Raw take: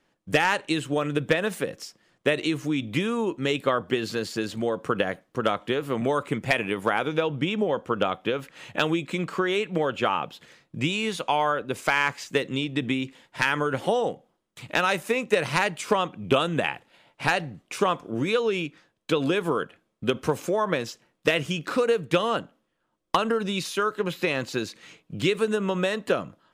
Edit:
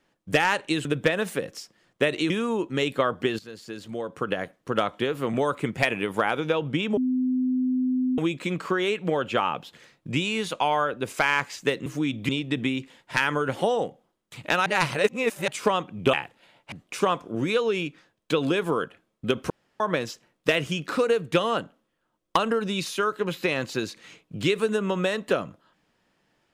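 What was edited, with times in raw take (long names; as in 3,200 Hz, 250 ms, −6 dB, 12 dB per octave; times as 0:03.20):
0:00.85–0:01.10: remove
0:02.55–0:02.98: move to 0:12.54
0:04.07–0:05.46: fade in, from −16 dB
0:07.65–0:08.86: beep over 255 Hz −21 dBFS
0:14.91–0:15.73: reverse
0:16.38–0:16.64: remove
0:17.23–0:17.51: remove
0:20.29–0:20.59: fill with room tone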